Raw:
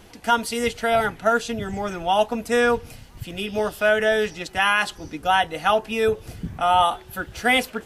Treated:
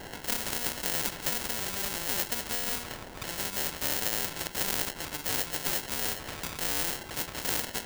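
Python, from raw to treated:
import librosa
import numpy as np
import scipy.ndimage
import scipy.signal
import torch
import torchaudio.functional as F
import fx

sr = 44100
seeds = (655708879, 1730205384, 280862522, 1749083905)

y = fx.hum_notches(x, sr, base_hz=60, count=5)
y = fx.sample_hold(y, sr, seeds[0], rate_hz=1200.0, jitter_pct=0)
y = fx.spectral_comp(y, sr, ratio=4.0)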